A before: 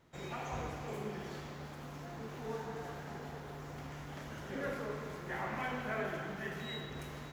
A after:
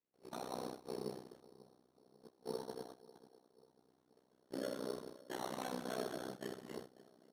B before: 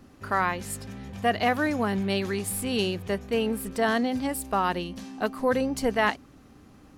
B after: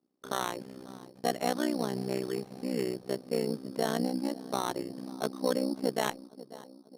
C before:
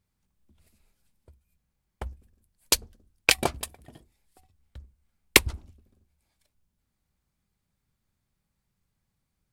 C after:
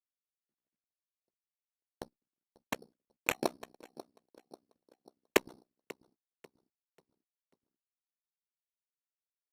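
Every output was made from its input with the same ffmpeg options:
-filter_complex "[0:a]highpass=f=240:w=0.5412,highpass=f=240:w=1.3066,agate=range=-25dB:threshold=-43dB:ratio=16:detection=peak,tiltshelf=f=640:g=5.5,asplit=2[a][b];[b]adelay=541,lowpass=f=1.6k:p=1,volume=-20dB,asplit=2[c][d];[d]adelay=541,lowpass=f=1.6k:p=1,volume=0.49,asplit=2[e][f];[f]adelay=541,lowpass=f=1.6k:p=1,volume=0.49,asplit=2[g][h];[h]adelay=541,lowpass=f=1.6k:p=1,volume=0.49[i];[c][e][g][i]amix=inputs=4:normalize=0[j];[a][j]amix=inputs=2:normalize=0,adynamicsmooth=sensitivity=2:basefreq=1.8k,tremolo=f=63:d=1,asplit=2[k][l];[l]acompressor=threshold=-42dB:ratio=6,volume=-1dB[m];[k][m]amix=inputs=2:normalize=0,acrusher=samples=9:mix=1:aa=0.000001,aresample=32000,aresample=44100,volume=-2.5dB" -ar 48000 -c:a libopus -b:a 256k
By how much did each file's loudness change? -3.5, -6.0, -11.0 LU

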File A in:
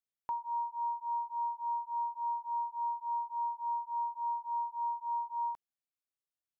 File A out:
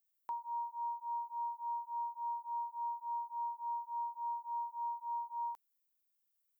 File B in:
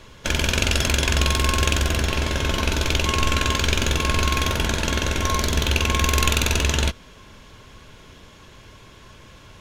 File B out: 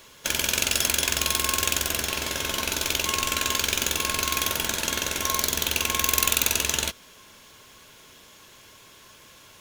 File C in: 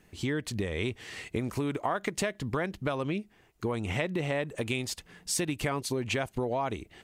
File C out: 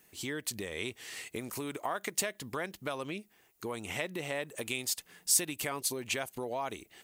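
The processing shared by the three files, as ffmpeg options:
-af "acontrast=74,aemphasis=mode=production:type=bsi,volume=-11dB"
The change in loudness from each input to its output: -4.5, -2.0, -2.5 LU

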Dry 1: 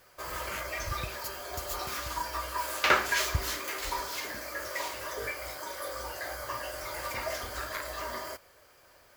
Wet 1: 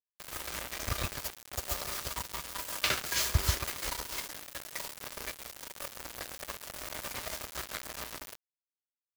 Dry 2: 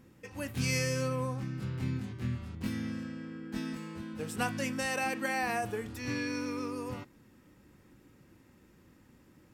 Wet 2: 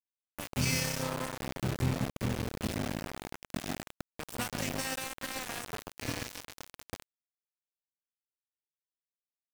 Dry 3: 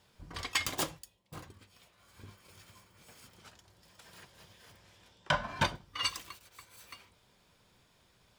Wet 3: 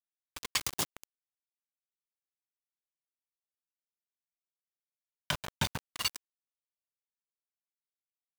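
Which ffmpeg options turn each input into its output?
-filter_complex "[0:a]acrossover=split=200|3000[a][b][c];[b]acompressor=threshold=-38dB:ratio=5[d];[a][d][c]amix=inputs=3:normalize=0,asplit=2[e][f];[f]adelay=136,lowpass=f=1.1k:p=1,volume=-4dB,asplit=2[g][h];[h]adelay=136,lowpass=f=1.1k:p=1,volume=0.32,asplit=2[i][j];[j]adelay=136,lowpass=f=1.1k:p=1,volume=0.32,asplit=2[k][l];[l]adelay=136,lowpass=f=1.1k:p=1,volume=0.32[m];[e][g][i][k][m]amix=inputs=5:normalize=0,aeval=exprs='val(0)*gte(abs(val(0)),0.0251)':c=same,volume=3dB"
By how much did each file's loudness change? -2.5, -0.5, -0.5 LU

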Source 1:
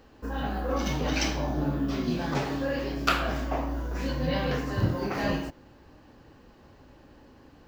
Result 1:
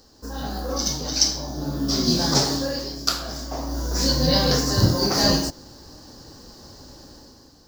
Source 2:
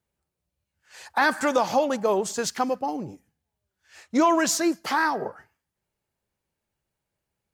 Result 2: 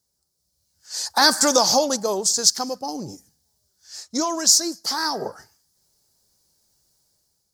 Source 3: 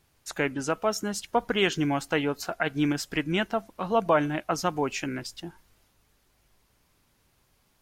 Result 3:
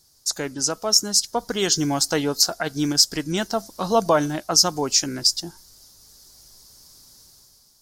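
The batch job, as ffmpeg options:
-af "highshelf=f=3.6k:t=q:w=3:g=12,dynaudnorm=f=160:g=7:m=9dB,volume=-1dB"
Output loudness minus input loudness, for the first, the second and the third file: +7.5, +5.0, +7.0 LU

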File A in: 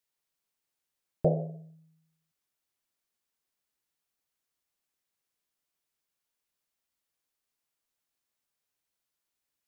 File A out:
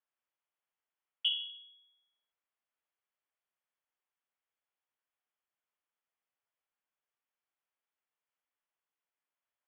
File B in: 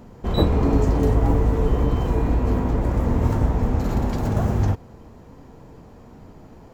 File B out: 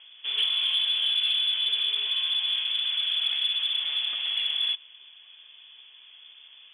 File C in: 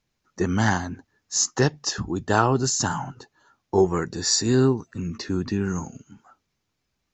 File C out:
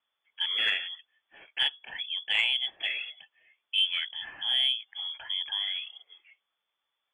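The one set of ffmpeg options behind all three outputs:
-filter_complex "[0:a]lowpass=f=3k:t=q:w=0.5098,lowpass=f=3k:t=q:w=0.6013,lowpass=f=3k:t=q:w=0.9,lowpass=f=3k:t=q:w=2.563,afreqshift=-3500,asplit=2[a][b];[b]highpass=f=720:p=1,volume=9dB,asoftclip=type=tanh:threshold=-3.5dB[c];[a][c]amix=inputs=2:normalize=0,lowpass=f=1.2k:p=1,volume=-6dB,volume=-3dB"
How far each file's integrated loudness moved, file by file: -3.0, -2.0, -4.5 LU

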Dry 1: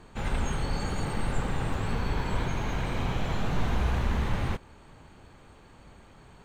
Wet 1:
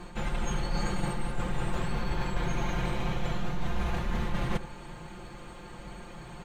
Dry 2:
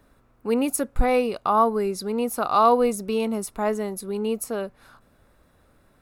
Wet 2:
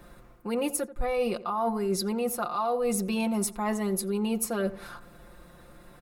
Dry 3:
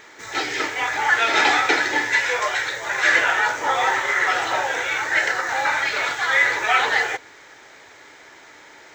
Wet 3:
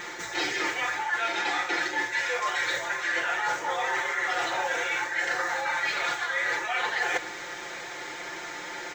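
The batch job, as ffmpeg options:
-filter_complex "[0:a]aecho=1:1:5.7:0.84,areverse,acompressor=threshold=-31dB:ratio=16,areverse,asplit=2[a][b];[b]adelay=86,lowpass=f=1.4k:p=1,volume=-14.5dB,asplit=2[c][d];[d]adelay=86,lowpass=f=1.4k:p=1,volume=0.4,asplit=2[e][f];[f]adelay=86,lowpass=f=1.4k:p=1,volume=0.4,asplit=2[g][h];[h]adelay=86,lowpass=f=1.4k:p=1,volume=0.4[i];[a][c][e][g][i]amix=inputs=5:normalize=0,volume=6dB"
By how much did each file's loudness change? -2.0, -5.5, -8.5 LU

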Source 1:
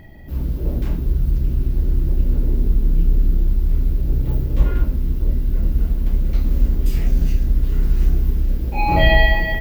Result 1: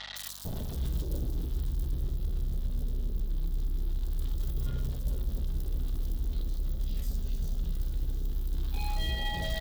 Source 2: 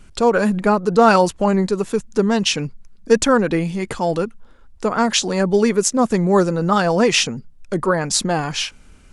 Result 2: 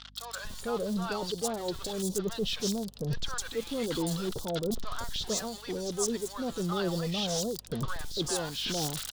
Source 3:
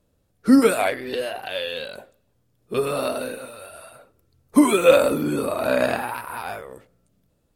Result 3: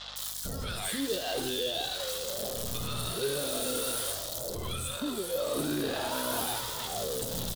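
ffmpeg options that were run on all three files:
-filter_complex "[0:a]aeval=exprs='val(0)+0.5*0.0631*sgn(val(0))':c=same,highshelf=f=2.9k:t=q:w=3:g=6.5,areverse,acompressor=threshold=-24dB:ratio=10,areverse,flanger=delay=1.5:depth=1.1:regen=-60:speed=0.44:shape=sinusoidal,acrossover=split=830|4500[a][b][c];[c]adelay=160[d];[a]adelay=450[e];[e][b][d]amix=inputs=3:normalize=0,aeval=exprs='val(0)+0.00178*(sin(2*PI*50*n/s)+sin(2*PI*2*50*n/s)/2+sin(2*PI*3*50*n/s)/3+sin(2*PI*4*50*n/s)/4+sin(2*PI*5*50*n/s)/5)':c=same"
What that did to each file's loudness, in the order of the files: -14.5, -15.0, -10.5 LU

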